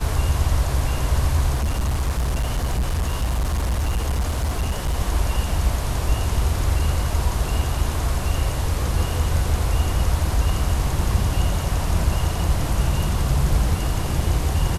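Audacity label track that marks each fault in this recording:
1.540000	4.950000	clipped -18 dBFS

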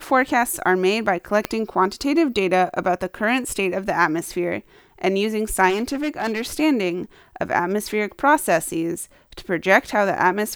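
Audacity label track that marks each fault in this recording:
1.450000	1.450000	pop -6 dBFS
5.690000	6.420000	clipped -18.5 dBFS

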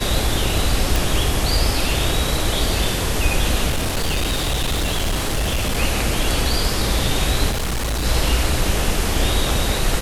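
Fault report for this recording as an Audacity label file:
0.960000	0.960000	pop
3.690000	5.790000	clipped -16.5 dBFS
7.500000	8.060000	clipped -19 dBFS

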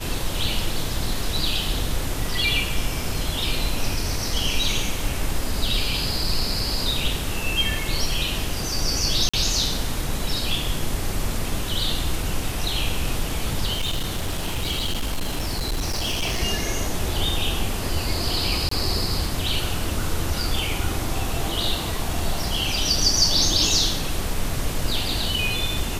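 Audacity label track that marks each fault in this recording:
9.290000	9.340000	dropout 45 ms
13.730000	16.400000	clipped -20.5 dBFS
18.690000	18.710000	dropout 24 ms

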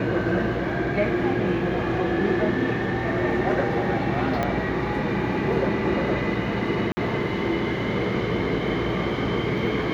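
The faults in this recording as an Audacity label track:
4.430000	4.430000	pop -12 dBFS
6.920000	6.970000	dropout 50 ms

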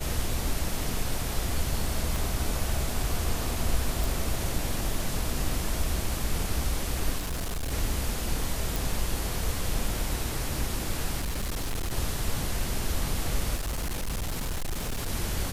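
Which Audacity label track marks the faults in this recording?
2.160000	2.160000	pop
4.040000	4.040000	pop
7.180000	7.730000	clipped -27.5 dBFS
8.760000	8.760000	pop
11.190000	11.930000	clipped -26.5 dBFS
13.550000	15.090000	clipped -27 dBFS

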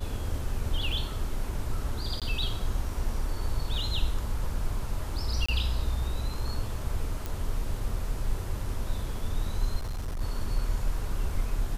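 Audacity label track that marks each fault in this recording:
0.920000	0.920000	dropout 3.7 ms
2.200000	2.220000	dropout 17 ms
5.460000	5.490000	dropout 25 ms
7.260000	7.260000	pop
9.760000	10.220000	clipped -29 dBFS

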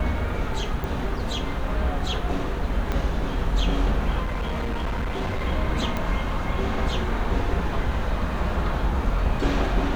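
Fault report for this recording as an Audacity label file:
0.840000	0.840000	pop
2.920000	2.920000	pop -14 dBFS
4.230000	5.450000	clipped -23 dBFS
5.970000	5.970000	pop -13 dBFS

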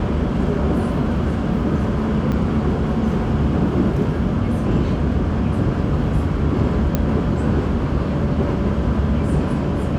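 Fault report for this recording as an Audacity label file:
2.320000	2.320000	dropout 4.8 ms
6.950000	6.950000	pop -5 dBFS

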